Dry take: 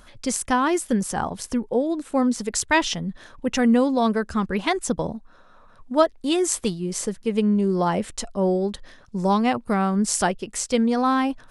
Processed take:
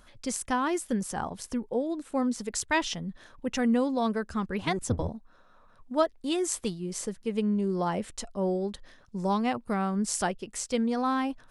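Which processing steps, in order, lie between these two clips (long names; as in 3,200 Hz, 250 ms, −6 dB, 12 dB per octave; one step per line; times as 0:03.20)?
0:04.61–0:05.09: sub-octave generator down 1 octave, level +4 dB
level −7 dB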